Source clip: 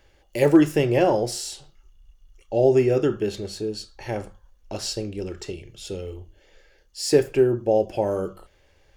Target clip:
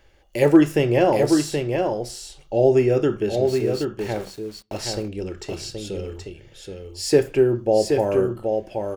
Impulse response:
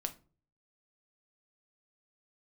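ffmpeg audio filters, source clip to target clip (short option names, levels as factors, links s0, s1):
-filter_complex "[0:a]asplit=3[s0][s1][s2];[s0]afade=t=out:st=3.46:d=0.02[s3];[s1]aeval=exprs='val(0)*gte(abs(val(0)),0.0106)':c=same,afade=t=in:st=3.46:d=0.02,afade=t=out:st=4.77:d=0.02[s4];[s2]afade=t=in:st=4.77:d=0.02[s5];[s3][s4][s5]amix=inputs=3:normalize=0,aecho=1:1:775:0.562,asplit=2[s6][s7];[1:a]atrim=start_sample=2205,lowpass=3200,highshelf=f=2500:g=8.5[s8];[s7][s8]afir=irnorm=-1:irlink=0,volume=0.188[s9];[s6][s9]amix=inputs=2:normalize=0"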